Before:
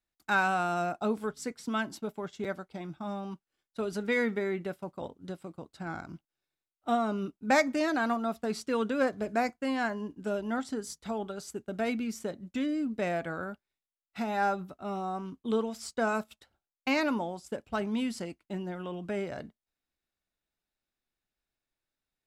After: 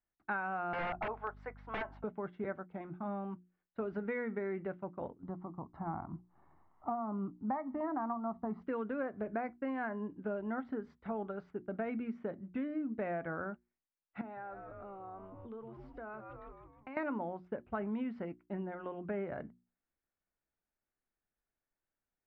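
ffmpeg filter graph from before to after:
ffmpeg -i in.wav -filter_complex "[0:a]asettb=1/sr,asplit=3[link_01][link_02][link_03];[link_01]atrim=end=0.734[link_04];[link_02]atrim=start=0.73:end=2.04,asetpts=PTS-STARTPTS,afade=type=in:duration=0.004:curve=qsin,afade=type=out:start_time=1.306:duration=0.004:curve=qsin,highpass=frequency=770:width_type=q:width=2.4,aeval=exprs='val(0)+0.00282*(sin(2*PI*50*n/s)+sin(2*PI*2*50*n/s)/2+sin(2*PI*3*50*n/s)/3+sin(2*PI*4*50*n/s)/4+sin(2*PI*5*50*n/s)/5)':channel_layout=same,aeval=exprs='(mod(15.8*val(0)+1,2)-1)/15.8':channel_layout=same[link_05];[link_03]atrim=start=2.036[link_06];[link_04][link_05]acrossfade=duration=0.004:curve1=hsin:curve2=qsin[link_07];[link_07][link_06]acrossfade=duration=0.004:curve1=qsin:curve2=hsin,asettb=1/sr,asplit=3[link_08][link_09][link_10];[link_08]atrim=end=5.234[link_11];[link_09]atrim=start=5.23:end=8.62,asetpts=PTS-STARTPTS,afade=type=in:duration=0.004:curve=qsin,afade=type=out:start_time=3.386:duration=0.004:curve=qsin,highshelf=frequency=1600:width_type=q:width=1.5:gain=-13.5,acompressor=mode=upward:threshold=-41dB:ratio=2.5:attack=3.2:release=140:knee=2.83:detection=peak,aecho=1:1:1:0.64,atrim=end_sample=149499[link_12];[link_10]atrim=start=8.616[link_13];[link_11][link_12]acrossfade=duration=0.004:curve1=hsin:curve2=qsin[link_14];[link_14][link_13]acrossfade=duration=0.004:curve1=qsin:curve2=hsin,asettb=1/sr,asplit=3[link_15][link_16][link_17];[link_15]atrim=end=14.214[link_18];[link_16]atrim=start=14.21:end=16.97,asetpts=PTS-STARTPTS,afade=type=in:duration=0.004:curve=qsin,afade=type=out:start_time=2.756:duration=0.004:curve=qsin,asplit=6[link_19][link_20][link_21][link_22][link_23][link_24];[link_20]adelay=156,afreqshift=-89,volume=-11dB[link_25];[link_21]adelay=312,afreqshift=-178,volume=-17.6dB[link_26];[link_22]adelay=468,afreqshift=-267,volume=-24.1dB[link_27];[link_23]adelay=624,afreqshift=-356,volume=-30.7dB[link_28];[link_24]adelay=780,afreqshift=-445,volume=-37.2dB[link_29];[link_19][link_25][link_26][link_27][link_28][link_29]amix=inputs=6:normalize=0,atrim=end_sample=121716,acompressor=threshold=-43dB:ratio=4:attack=3.2:release=140:knee=1:detection=peak,equalizer=frequency=180:width=4.4:gain=-10.5[link_30];[link_17]atrim=start=16.966[link_31];[link_18][link_30]acrossfade=duration=0.004:curve1=hsin:curve2=qsin[link_32];[link_32][link_31]acrossfade=duration=0.004:curve1=qsin:curve2=hsin,lowpass=frequency=2000:width=0.5412,lowpass=frequency=2000:width=1.3066,bandreject=frequency=60:width_type=h:width=6,bandreject=frequency=120:width_type=h:width=6,bandreject=frequency=180:width_type=h:width=6,bandreject=frequency=240:width_type=h:width=6,bandreject=frequency=300:width_type=h:width=6,bandreject=frequency=360:width_type=h:width=6,acompressor=threshold=-31dB:ratio=12,volume=-2dB" out.wav

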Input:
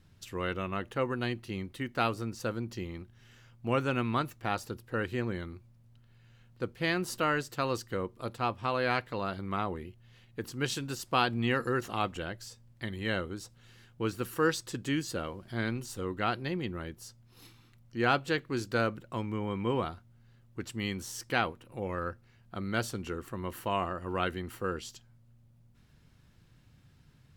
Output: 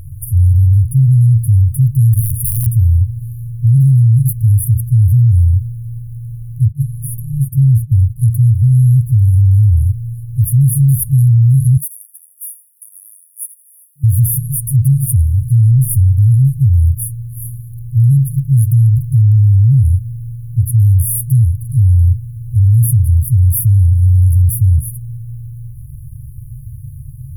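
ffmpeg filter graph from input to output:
ffmpeg -i in.wav -filter_complex "[0:a]asettb=1/sr,asplit=3[link_01][link_02][link_03];[link_01]atrim=end=2.134[link_04];[link_02]atrim=start=2.13:end=2.73,asetpts=PTS-STARTPTS,afade=type=in:duration=0.004:curve=qsin,afade=type=out:start_time=0.596:duration=0.004:curve=qsin,equalizer=frequency=4100:width=7.4:gain=-4,aeval=exprs='(mod(50.1*val(0)+1,2)-1)/50.1':channel_layout=same[link_05];[link_03]atrim=start=2.726[link_06];[link_04][link_05]acrossfade=duration=0.004:curve1=hsin:curve2=qsin[link_07];[link_07][link_06]acrossfade=duration=0.004:curve1=qsin:curve2=hsin,asettb=1/sr,asplit=3[link_08][link_09][link_10];[link_08]atrim=end=6.684[link_11];[link_09]atrim=start=6.68:end=8.16,asetpts=PTS-STARTPTS,afade=type=in:duration=0.004:curve=qsin,afade=type=out:start_time=1.476:duration=0.004:curve=qsin,acrossover=split=3300[link_12][link_13];[link_13]acompressor=threshold=-53dB:ratio=4:attack=1:release=60[link_14];[link_12][link_14]amix=inputs=2:normalize=0,agate=range=-27dB:threshold=-53dB:ratio=16:release=100:detection=peak[link_15];[link_10]atrim=start=8.156[link_16];[link_11][link_15]acrossfade=duration=0.004:curve1=hsin:curve2=qsin[link_17];[link_17][link_16]acrossfade=duration=0.004:curve1=qsin:curve2=hsin,asettb=1/sr,asplit=3[link_18][link_19][link_20];[link_18]atrim=end=11.774[link_21];[link_19]atrim=start=11.77:end=14.04,asetpts=PTS-STARTPTS,afade=type=in:duration=0.004:curve=qsin,afade=type=out:start_time=2.266:duration=0.004:curve=qsin,highpass=frequency=1100:width=0.5412,highpass=frequency=1100:width=1.3066,aecho=1:1:84|168|252:0.188|0.0546|0.0158,atrim=end_sample=100107[link_22];[link_20]atrim=start=14.036[link_23];[link_21][link_22]acrossfade=duration=0.004:curve1=hsin:curve2=qsin[link_24];[link_24][link_23]acrossfade=duration=0.004:curve1=qsin:curve2=hsin,afftfilt=real='re*(1-between(b*sr/4096,140,9300))':imag='im*(1-between(b*sr/4096,140,9300))':win_size=4096:overlap=0.75,adynamicequalizer=threshold=0.00224:dfrequency=100:dqfactor=1.4:tfrequency=100:tqfactor=1.4:attack=5:release=100:ratio=0.375:range=3:mode=boostabove:tftype=bell,alimiter=level_in=36dB:limit=-1dB:release=50:level=0:latency=1,volume=-3.5dB" out.wav

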